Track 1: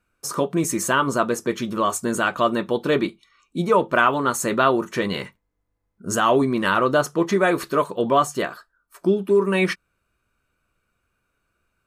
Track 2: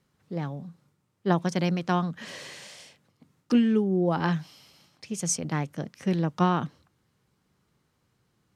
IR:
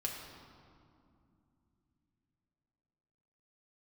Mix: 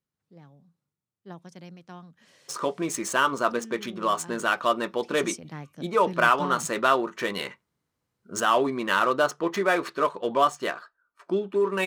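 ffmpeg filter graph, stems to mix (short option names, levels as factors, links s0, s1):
-filter_complex "[0:a]highpass=f=530:p=1,highshelf=f=8600:g=-7.5,adynamicsmooth=sensitivity=6.5:basefreq=3100,adelay=2250,volume=0.841[s0];[1:a]volume=0.299,afade=t=in:st=4.81:d=0.28:silence=0.375837[s1];[s0][s1]amix=inputs=2:normalize=0,highshelf=f=7200:g=6.5"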